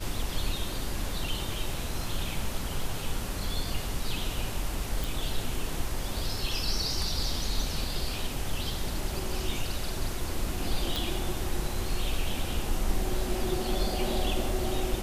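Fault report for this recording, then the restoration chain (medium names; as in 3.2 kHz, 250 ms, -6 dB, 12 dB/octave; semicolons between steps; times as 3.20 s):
5.04 s: pop
10.96 s: pop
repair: de-click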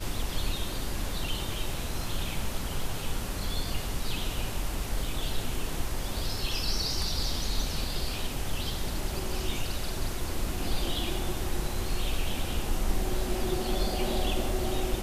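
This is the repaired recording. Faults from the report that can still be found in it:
nothing left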